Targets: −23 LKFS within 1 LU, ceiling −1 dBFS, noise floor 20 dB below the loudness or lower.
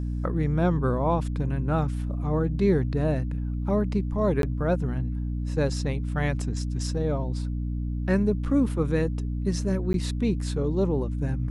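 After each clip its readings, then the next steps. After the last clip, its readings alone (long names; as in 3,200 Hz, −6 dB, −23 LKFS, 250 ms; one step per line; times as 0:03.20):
number of dropouts 2; longest dropout 12 ms; mains hum 60 Hz; hum harmonics up to 300 Hz; level of the hum −26 dBFS; integrated loudness −26.5 LKFS; sample peak −10.5 dBFS; target loudness −23.0 LKFS
→ repair the gap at 0:04.42/0:09.93, 12 ms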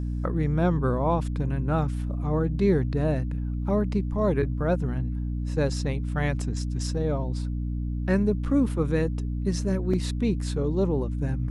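number of dropouts 0; mains hum 60 Hz; hum harmonics up to 300 Hz; level of the hum −26 dBFS
→ mains-hum notches 60/120/180/240/300 Hz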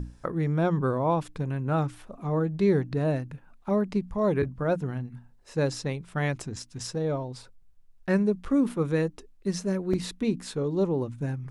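mains hum none found; integrated loudness −28.5 LKFS; sample peak −11.5 dBFS; target loudness −23.0 LKFS
→ level +5.5 dB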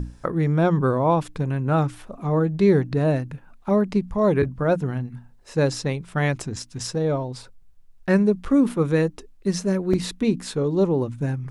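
integrated loudness −23.0 LKFS; sample peak −6.0 dBFS; background noise floor −50 dBFS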